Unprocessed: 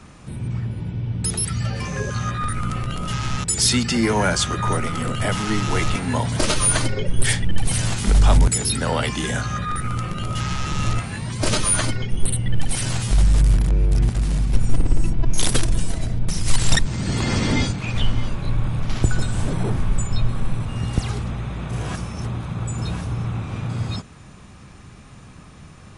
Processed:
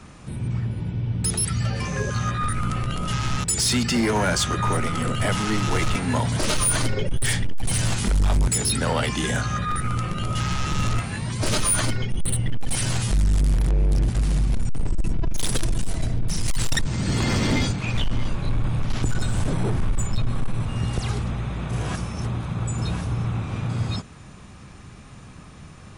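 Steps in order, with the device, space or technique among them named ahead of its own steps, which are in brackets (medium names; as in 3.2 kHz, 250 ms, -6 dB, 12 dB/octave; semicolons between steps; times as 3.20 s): limiter into clipper (peak limiter -10.5 dBFS, peak gain reduction 7 dB; hard clipper -16 dBFS, distortion -14 dB)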